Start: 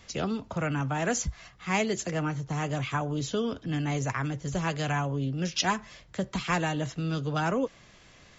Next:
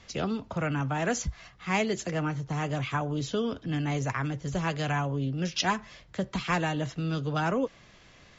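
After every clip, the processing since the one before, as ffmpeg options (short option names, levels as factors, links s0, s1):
-af "lowpass=6300"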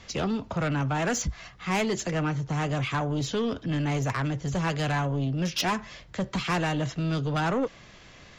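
-af "asoftclip=type=tanh:threshold=0.0473,volume=1.78"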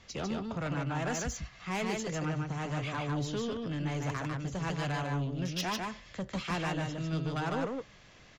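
-af "aecho=1:1:149:0.708,volume=0.398"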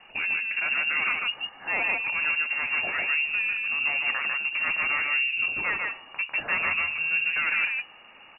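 -af "lowpass=f=2500:t=q:w=0.5098,lowpass=f=2500:t=q:w=0.6013,lowpass=f=2500:t=q:w=0.9,lowpass=f=2500:t=q:w=2.563,afreqshift=-2900,volume=2.24"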